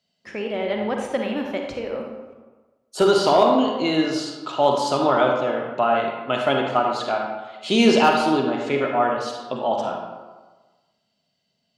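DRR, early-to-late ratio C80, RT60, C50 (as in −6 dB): 1.5 dB, 5.0 dB, 1.3 s, 2.5 dB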